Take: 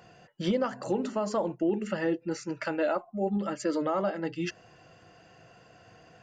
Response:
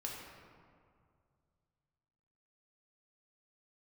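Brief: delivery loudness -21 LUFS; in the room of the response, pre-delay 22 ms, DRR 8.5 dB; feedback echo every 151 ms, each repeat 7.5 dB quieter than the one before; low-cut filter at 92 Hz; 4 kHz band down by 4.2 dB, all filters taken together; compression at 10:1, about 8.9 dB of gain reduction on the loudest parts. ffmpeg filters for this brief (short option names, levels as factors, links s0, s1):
-filter_complex "[0:a]highpass=92,equalizer=f=4000:t=o:g=-6,acompressor=threshold=0.0251:ratio=10,aecho=1:1:151|302|453|604|755:0.422|0.177|0.0744|0.0312|0.0131,asplit=2[s0][s1];[1:a]atrim=start_sample=2205,adelay=22[s2];[s1][s2]afir=irnorm=-1:irlink=0,volume=0.376[s3];[s0][s3]amix=inputs=2:normalize=0,volume=5.96"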